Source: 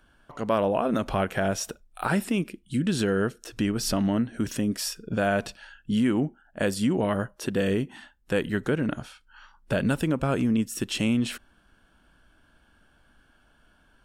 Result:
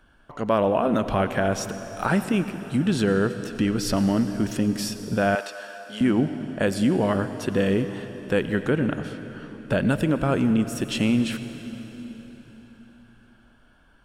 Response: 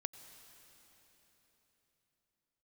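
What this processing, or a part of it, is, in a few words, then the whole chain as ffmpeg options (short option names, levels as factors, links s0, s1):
swimming-pool hall: -filter_complex "[1:a]atrim=start_sample=2205[s0];[0:a][s0]afir=irnorm=-1:irlink=0,highshelf=f=4600:g=-6,asettb=1/sr,asplit=3[s1][s2][s3];[s1]atrim=end=5.354[s4];[s2]atrim=start=5.35:end=6.01,asetpts=PTS-STARTPTS,afade=t=in:d=0.004:c=qsin,afade=t=out:st=0.656:d=0.004:c=qsin,highpass=640[s5];[s3]atrim=start=6.006[s6];[s4][s5]acrossfade=d=0.004:c1=hsin:c2=qsin[s7];[s7][s6]acrossfade=d=0.004:c1=qsin:c2=hsin,volume=1.88"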